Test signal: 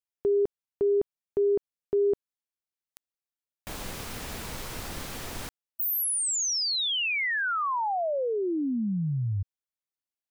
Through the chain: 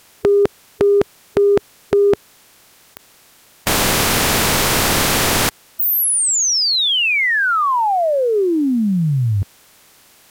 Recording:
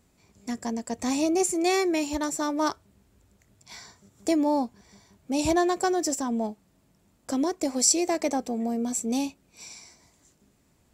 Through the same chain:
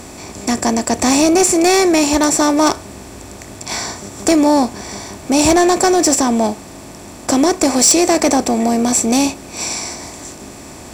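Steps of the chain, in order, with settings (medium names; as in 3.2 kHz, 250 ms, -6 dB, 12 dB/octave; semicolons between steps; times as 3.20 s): spectral levelling over time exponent 0.6; sine folder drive 7 dB, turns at -5 dBFS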